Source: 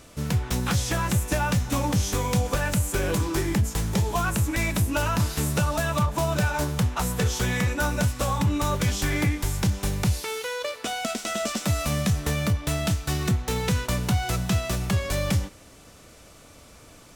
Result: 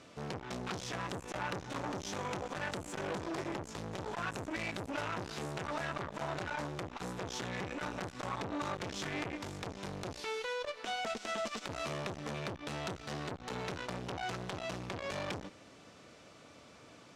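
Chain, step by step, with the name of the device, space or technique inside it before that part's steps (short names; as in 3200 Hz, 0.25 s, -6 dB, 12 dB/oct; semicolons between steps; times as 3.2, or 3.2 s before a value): valve radio (BPF 140–4900 Hz; tube stage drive 23 dB, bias 0.35; core saturation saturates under 1000 Hz); gain -3.5 dB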